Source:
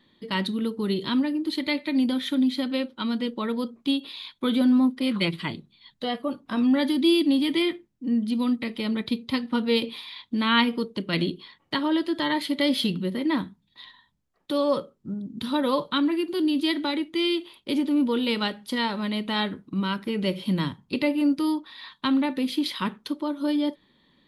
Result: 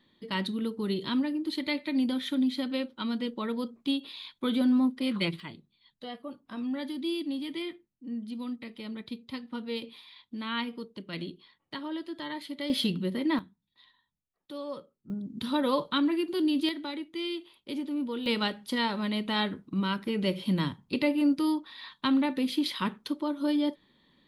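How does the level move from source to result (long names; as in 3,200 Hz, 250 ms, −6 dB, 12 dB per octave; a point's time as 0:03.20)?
−4.5 dB
from 0:05.40 −12 dB
from 0:12.70 −3 dB
from 0:13.39 −14.5 dB
from 0:15.10 −3 dB
from 0:16.69 −9.5 dB
from 0:18.26 −2.5 dB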